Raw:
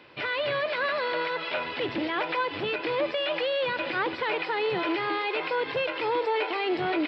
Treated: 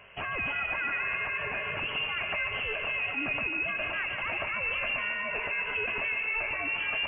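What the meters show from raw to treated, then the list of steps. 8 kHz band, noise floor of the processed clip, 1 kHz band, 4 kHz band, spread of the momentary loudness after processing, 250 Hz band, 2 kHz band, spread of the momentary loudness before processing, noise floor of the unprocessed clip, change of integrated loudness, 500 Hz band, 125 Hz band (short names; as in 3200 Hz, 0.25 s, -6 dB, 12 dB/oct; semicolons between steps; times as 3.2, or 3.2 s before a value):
n/a, -35 dBFS, -8.0 dB, -4.0 dB, 2 LU, -12.5 dB, +2.0 dB, 2 LU, -36 dBFS, -1.5 dB, -13.0 dB, -1.5 dB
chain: limiter -25 dBFS, peak gain reduction 7 dB; dark delay 0.144 s, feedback 58%, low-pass 1700 Hz, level -5 dB; inverted band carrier 3100 Hz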